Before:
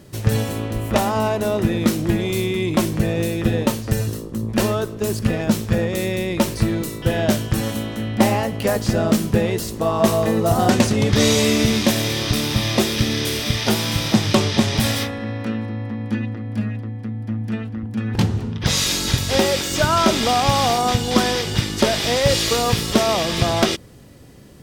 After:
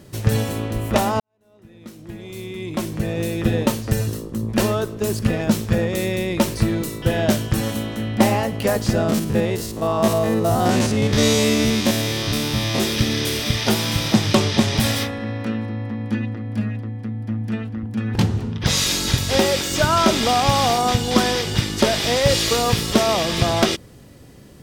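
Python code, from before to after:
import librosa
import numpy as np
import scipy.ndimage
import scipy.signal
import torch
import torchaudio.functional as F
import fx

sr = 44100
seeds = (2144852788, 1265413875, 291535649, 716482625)

y = fx.spec_steps(x, sr, hold_ms=50, at=(9.03, 12.82), fade=0.02)
y = fx.edit(y, sr, fx.fade_in_span(start_s=1.2, length_s=2.31, curve='qua'), tone=tone)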